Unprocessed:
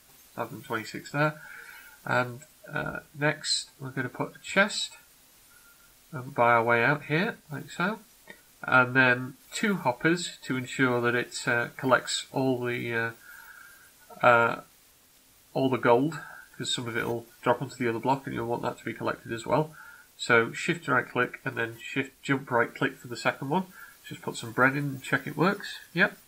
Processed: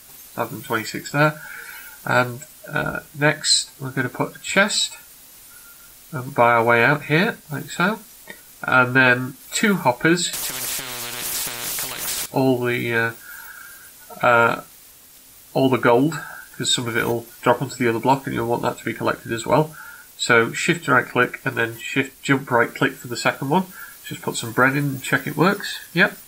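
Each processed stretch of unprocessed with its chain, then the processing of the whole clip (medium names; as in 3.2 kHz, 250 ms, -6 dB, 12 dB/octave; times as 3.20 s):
10.33–12.26 s: treble shelf 11 kHz -10 dB + compression 10:1, threshold -30 dBFS + spectrum-flattening compressor 10:1
whole clip: treble shelf 6.7 kHz +7 dB; loudness maximiser +12.5 dB; trim -4 dB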